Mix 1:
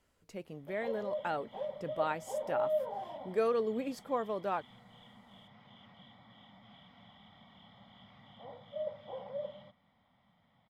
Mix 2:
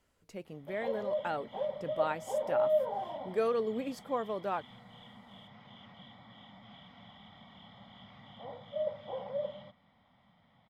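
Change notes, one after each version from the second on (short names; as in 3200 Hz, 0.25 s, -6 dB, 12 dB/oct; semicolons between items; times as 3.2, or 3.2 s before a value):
background +4.0 dB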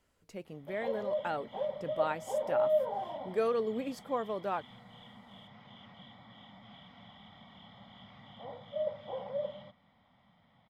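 none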